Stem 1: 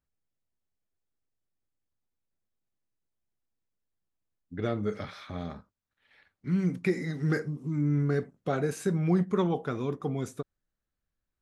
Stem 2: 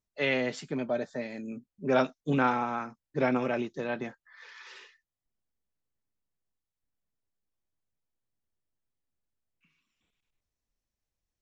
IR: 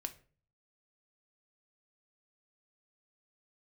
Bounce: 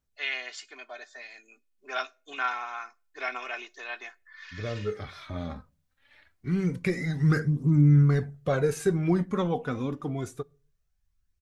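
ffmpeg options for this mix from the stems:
-filter_complex "[0:a]asubboost=boost=2.5:cutoff=140,aphaser=in_gain=1:out_gain=1:delay=4.2:decay=0.49:speed=0.26:type=triangular,volume=0.75,asplit=2[s0][s1];[s1]volume=0.282[s2];[1:a]highpass=1300,aecho=1:1:2.8:0.68,volume=0.75,asplit=3[s3][s4][s5];[s4]volume=0.299[s6];[s5]apad=whole_len=503197[s7];[s0][s7]sidechaincompress=threshold=0.00282:ratio=8:attack=5.8:release=1390[s8];[2:a]atrim=start_sample=2205[s9];[s2][s6]amix=inputs=2:normalize=0[s10];[s10][s9]afir=irnorm=-1:irlink=0[s11];[s8][s3][s11]amix=inputs=3:normalize=0,dynaudnorm=f=470:g=11:m=1.5"

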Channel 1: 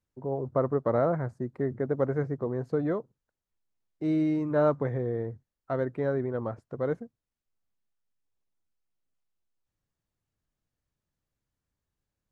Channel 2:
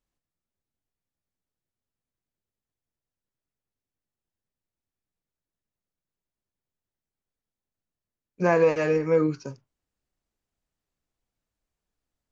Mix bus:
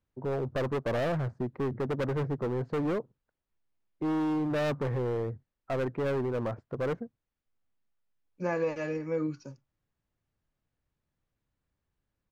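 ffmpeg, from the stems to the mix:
-filter_complex "[0:a]lowpass=3200,volume=29.9,asoftclip=hard,volume=0.0335,volume=1.33[s0];[1:a]equalizer=f=140:w=2.5:g=9.5,aecho=1:1:3.5:0.46,volume=0.299[s1];[s0][s1]amix=inputs=2:normalize=0"

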